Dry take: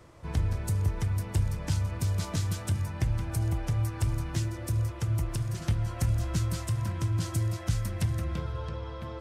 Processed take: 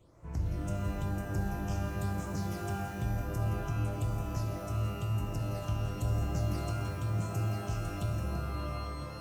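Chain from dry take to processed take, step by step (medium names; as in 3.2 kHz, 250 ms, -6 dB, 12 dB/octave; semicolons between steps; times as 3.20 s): phase shifter stages 8, 1 Hz, lowest notch 530–4200 Hz; pitch-shifted reverb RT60 1.6 s, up +12 st, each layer -2 dB, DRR 3.5 dB; trim -8.5 dB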